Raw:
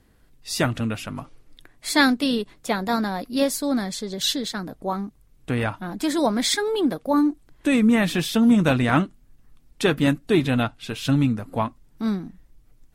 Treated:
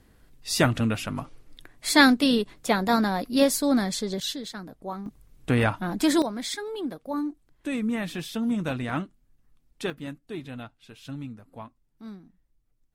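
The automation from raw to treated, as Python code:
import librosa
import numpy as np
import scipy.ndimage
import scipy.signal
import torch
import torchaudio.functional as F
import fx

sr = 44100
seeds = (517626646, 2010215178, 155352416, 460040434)

y = fx.gain(x, sr, db=fx.steps((0.0, 1.0), (4.2, -8.0), (5.06, 2.0), (6.22, -10.0), (9.9, -17.0)))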